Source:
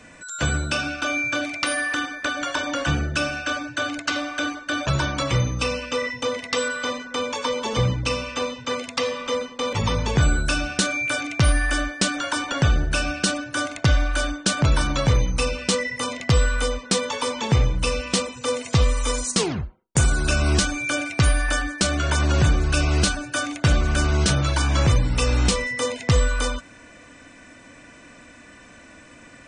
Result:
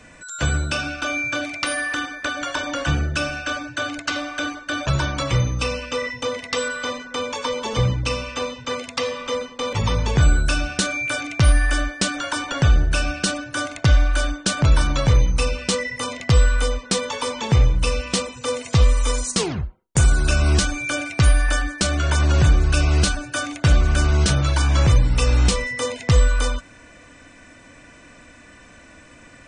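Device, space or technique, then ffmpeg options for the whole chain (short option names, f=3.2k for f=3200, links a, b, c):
low shelf boost with a cut just above: -af "lowshelf=f=85:g=6.5,equalizer=f=240:t=o:w=0.77:g=-2"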